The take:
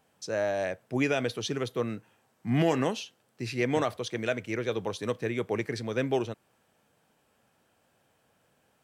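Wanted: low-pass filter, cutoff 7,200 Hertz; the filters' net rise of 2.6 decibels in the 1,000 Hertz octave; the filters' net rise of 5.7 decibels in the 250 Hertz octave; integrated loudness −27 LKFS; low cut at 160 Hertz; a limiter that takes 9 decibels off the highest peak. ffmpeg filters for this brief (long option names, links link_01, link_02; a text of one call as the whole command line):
ffmpeg -i in.wav -af "highpass=160,lowpass=7200,equalizer=frequency=250:width_type=o:gain=7.5,equalizer=frequency=1000:width_type=o:gain=3,volume=3.5dB,alimiter=limit=-16dB:level=0:latency=1" out.wav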